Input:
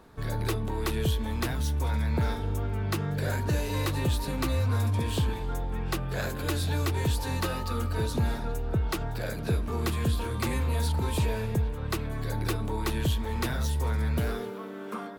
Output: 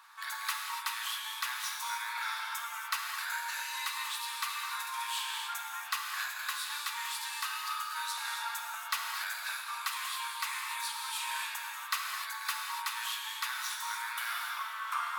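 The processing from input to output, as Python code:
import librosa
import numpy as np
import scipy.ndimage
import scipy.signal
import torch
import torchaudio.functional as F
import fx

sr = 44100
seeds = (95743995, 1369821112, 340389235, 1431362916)

y = scipy.signal.sosfilt(scipy.signal.butter(8, 960.0, 'highpass', fs=sr, output='sos'), x)
y = fx.rider(y, sr, range_db=10, speed_s=0.5)
y = fx.rev_gated(y, sr, seeds[0], gate_ms=320, shape='flat', drr_db=0.0)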